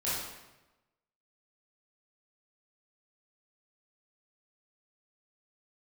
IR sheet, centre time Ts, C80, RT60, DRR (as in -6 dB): 81 ms, 2.5 dB, 1.0 s, -10.5 dB